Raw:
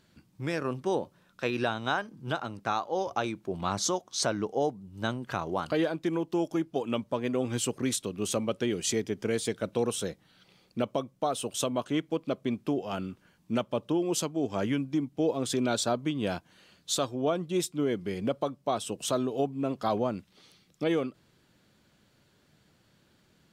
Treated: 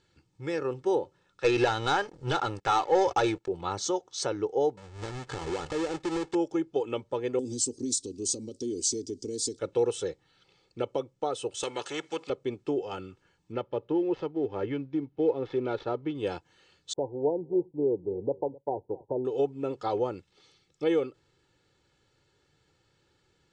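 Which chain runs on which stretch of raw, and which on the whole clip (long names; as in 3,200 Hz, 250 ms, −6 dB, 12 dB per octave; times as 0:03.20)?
0:01.44–0:03.48: parametric band 300 Hz −4.5 dB 2.5 octaves + leveller curve on the samples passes 3
0:04.77–0:06.35: each half-wave held at its own peak + downward compressor, threshold −28 dBFS
0:07.39–0:09.59: downward compressor, threshold −29 dBFS + drawn EQ curve 110 Hz 0 dB, 160 Hz −7 dB, 240 Hz +12 dB, 400 Hz −2 dB, 1,400 Hz −28 dB, 2,900 Hz −13 dB, 4,700 Hz +12 dB
0:11.63–0:12.30: high-pass filter 250 Hz + every bin compressed towards the loudest bin 2 to 1
0:13.52–0:16.15: gap after every zero crossing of 0.06 ms + high-frequency loss of the air 280 metres
0:16.93–0:19.25: linear-phase brick-wall low-pass 1,000 Hz + downward expander −53 dBFS + single-tap delay 260 ms −21 dB
whole clip: comb filter 2.3 ms, depth 69%; dynamic equaliser 440 Hz, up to +5 dB, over −36 dBFS, Q 0.83; Butterworth low-pass 8,500 Hz 48 dB per octave; level −5 dB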